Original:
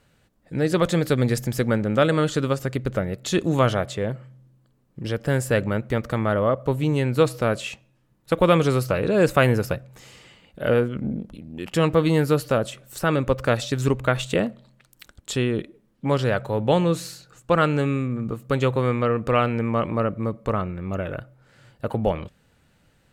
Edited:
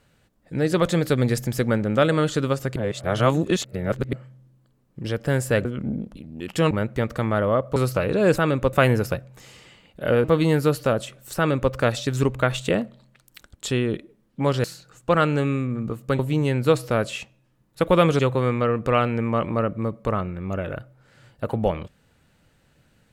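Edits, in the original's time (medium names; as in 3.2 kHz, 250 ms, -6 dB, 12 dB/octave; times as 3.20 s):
2.76–4.13 s: reverse
6.70–8.70 s: move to 18.60 s
10.83–11.89 s: move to 5.65 s
13.03–13.38 s: copy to 9.32 s
16.29–17.05 s: delete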